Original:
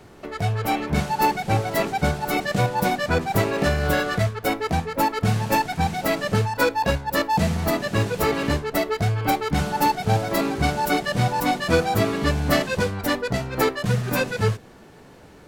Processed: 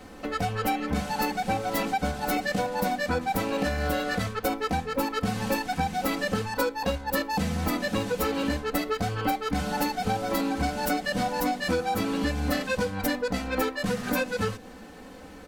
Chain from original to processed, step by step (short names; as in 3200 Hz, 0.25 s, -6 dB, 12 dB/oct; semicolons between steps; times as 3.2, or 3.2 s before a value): comb 3.9 ms, depth 93%; compressor, threshold -24 dBFS, peak gain reduction 13 dB